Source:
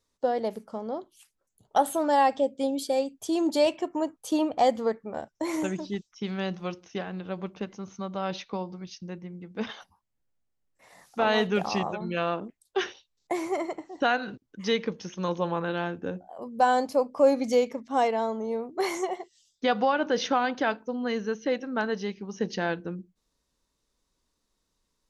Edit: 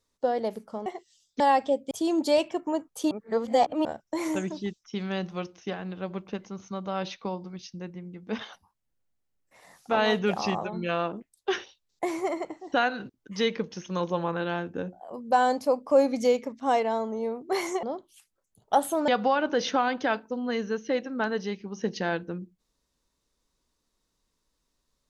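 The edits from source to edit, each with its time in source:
0.86–2.11 s: swap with 19.11–19.65 s
2.62–3.19 s: delete
4.39–5.13 s: reverse

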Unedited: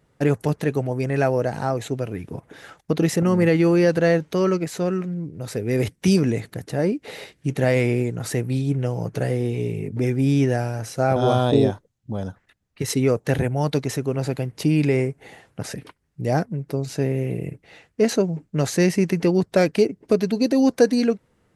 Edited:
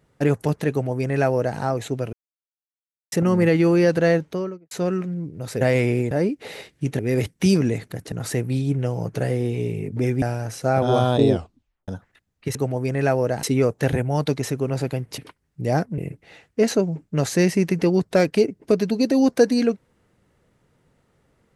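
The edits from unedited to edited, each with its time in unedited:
0.70–1.58 s: copy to 12.89 s
2.13–3.12 s: mute
4.11–4.71 s: studio fade out
5.61–6.74 s: swap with 7.62–8.12 s
10.22–10.56 s: delete
11.65 s: tape stop 0.57 s
14.64–15.78 s: delete
16.58–17.39 s: delete

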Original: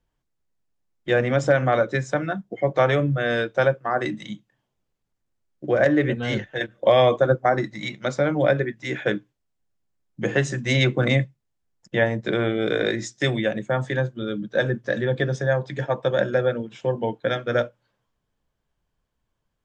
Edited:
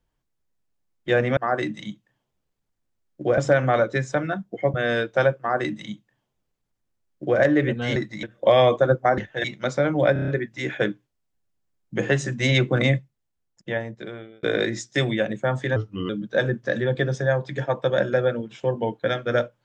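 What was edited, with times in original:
2.73–3.15 s: delete
3.80–5.81 s: copy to 1.37 s
6.37–6.63 s: swap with 7.58–7.85 s
8.54 s: stutter 0.03 s, 6 plays
11.23–12.69 s: fade out linear
14.02–14.30 s: speed 84%

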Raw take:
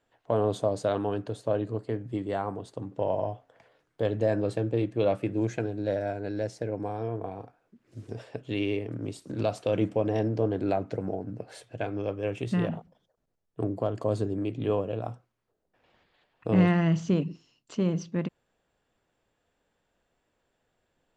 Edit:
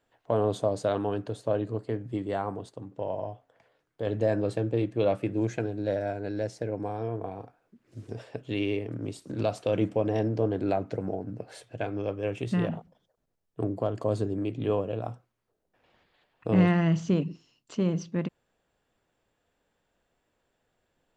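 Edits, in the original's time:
2.69–4.07 s: gain -4.5 dB

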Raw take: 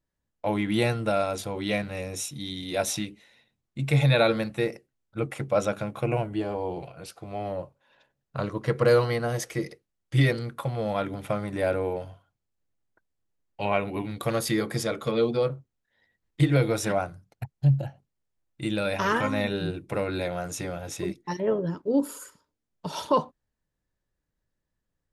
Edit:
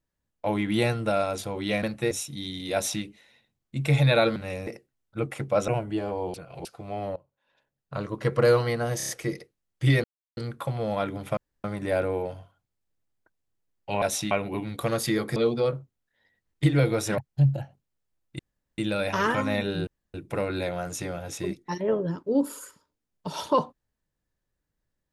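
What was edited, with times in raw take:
1.83–2.14 s: swap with 4.39–4.67 s
2.77–3.06 s: copy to 13.73 s
5.68–6.11 s: delete
6.77–7.08 s: reverse
7.59–8.70 s: fade in, from -21.5 dB
9.40 s: stutter 0.03 s, 5 plays
10.35 s: insert silence 0.33 s
11.35 s: insert room tone 0.27 s
14.78–15.13 s: delete
16.95–17.43 s: delete
18.64 s: insert room tone 0.39 s
19.73 s: insert room tone 0.27 s

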